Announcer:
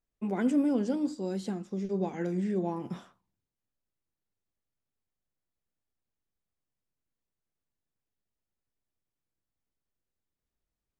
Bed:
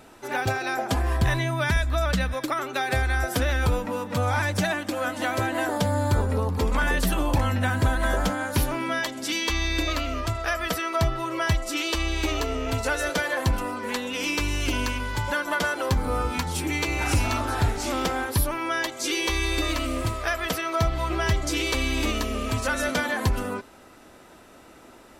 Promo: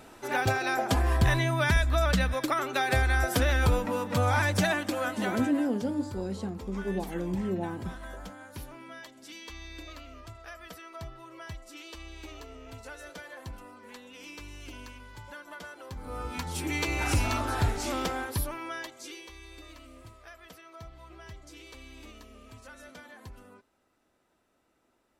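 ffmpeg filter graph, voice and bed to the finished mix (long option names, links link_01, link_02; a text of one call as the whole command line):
ffmpeg -i stem1.wav -i stem2.wav -filter_complex "[0:a]adelay=4950,volume=-1dB[link_01];[1:a]volume=14dB,afade=type=out:start_time=4.79:duration=0.93:silence=0.133352,afade=type=in:start_time=15.93:duration=0.88:silence=0.177828,afade=type=out:start_time=17.76:duration=1.53:silence=0.105925[link_02];[link_01][link_02]amix=inputs=2:normalize=0" out.wav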